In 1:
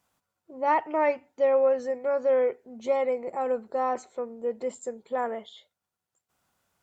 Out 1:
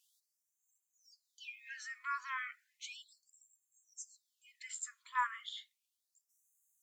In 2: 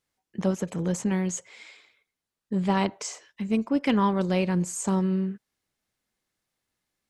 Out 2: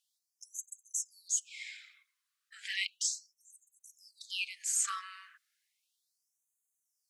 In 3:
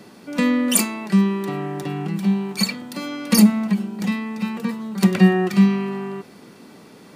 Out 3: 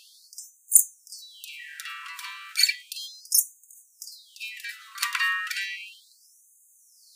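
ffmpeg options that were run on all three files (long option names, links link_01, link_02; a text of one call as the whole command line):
ffmpeg -i in.wav -af "afftfilt=real='re*gte(b*sr/1024,970*pow(6300/970,0.5+0.5*sin(2*PI*0.34*pts/sr)))':imag='im*gte(b*sr/1024,970*pow(6300/970,0.5+0.5*sin(2*PI*0.34*pts/sr)))':win_size=1024:overlap=0.75,volume=3dB" out.wav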